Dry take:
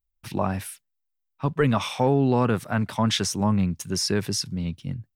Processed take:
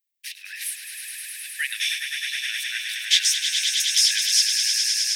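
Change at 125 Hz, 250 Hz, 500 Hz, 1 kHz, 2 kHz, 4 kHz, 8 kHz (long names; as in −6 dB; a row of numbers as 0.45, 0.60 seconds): below −40 dB, below −40 dB, below −40 dB, below −25 dB, +8.5 dB, +12.0 dB, +12.0 dB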